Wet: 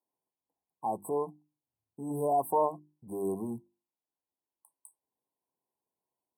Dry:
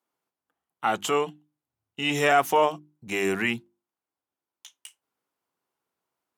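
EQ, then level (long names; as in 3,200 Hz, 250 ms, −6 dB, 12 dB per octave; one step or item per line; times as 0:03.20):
linear-phase brick-wall band-stop 1,100–7,900 Hz
−6.0 dB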